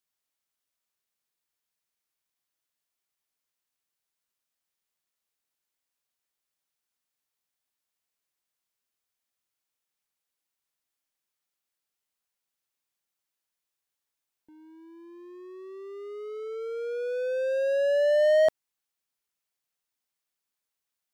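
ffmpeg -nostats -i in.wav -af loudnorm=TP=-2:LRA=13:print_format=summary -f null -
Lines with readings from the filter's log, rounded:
Input Integrated:    -25.3 LUFS
Input True Peak:     -13.9 dBTP
Input LRA:            12.7 LU
Input Threshold:     -37.6 LUFS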